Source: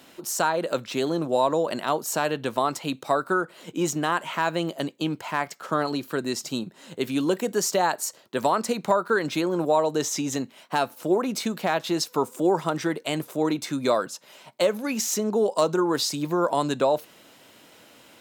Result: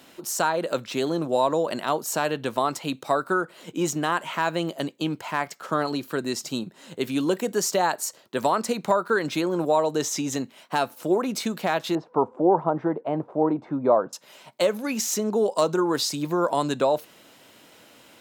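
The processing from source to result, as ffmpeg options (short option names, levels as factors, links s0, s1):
-filter_complex "[0:a]asettb=1/sr,asplit=3[s0][s1][s2];[s0]atrim=end=11.954[s3];[s1]atrim=start=11.95:end=14.13,asetpts=PTS-STARTPTS,afade=t=in:d=0.004:c=qsin,afade=t=out:st=2.176:d=0.004:c=qsin,lowpass=f=850:t=q:w=1.8[s4];[s2]atrim=start=14.126[s5];[s3][s4]acrossfade=d=0.004:c1=hsin:c2=qsin[s6];[s6][s5]acrossfade=d=0.004:c1=qsin:c2=hsin"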